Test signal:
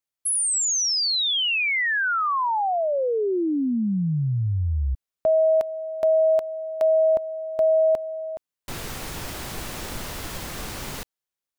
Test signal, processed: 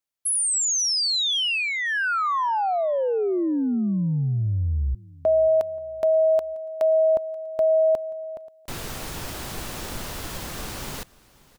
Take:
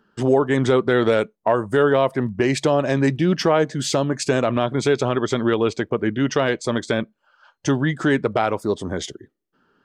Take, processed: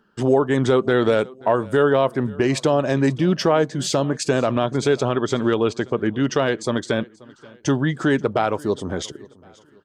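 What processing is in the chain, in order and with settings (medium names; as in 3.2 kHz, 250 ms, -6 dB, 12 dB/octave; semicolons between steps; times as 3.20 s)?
dynamic bell 2.1 kHz, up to -4 dB, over -44 dBFS, Q 3.2; on a send: feedback delay 532 ms, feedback 38%, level -23 dB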